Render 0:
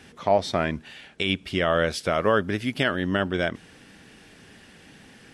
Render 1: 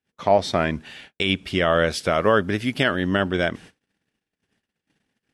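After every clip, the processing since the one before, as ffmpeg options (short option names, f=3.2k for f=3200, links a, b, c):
-af "agate=range=-41dB:threshold=-45dB:ratio=16:detection=peak,volume=3dB"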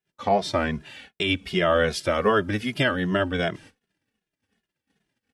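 -filter_complex "[0:a]asplit=2[a][b];[b]adelay=2.4,afreqshift=-2.6[c];[a][c]amix=inputs=2:normalize=1,volume=1dB"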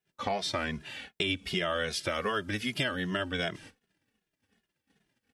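-filter_complex "[0:a]acrossover=split=1500|3700[a][b][c];[a]acompressor=threshold=-34dB:ratio=4[d];[b]acompressor=threshold=-36dB:ratio=4[e];[c]acompressor=threshold=-36dB:ratio=4[f];[d][e][f]amix=inputs=3:normalize=0,volume=1dB"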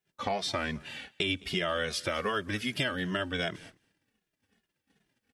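-af "aecho=1:1:213:0.0631"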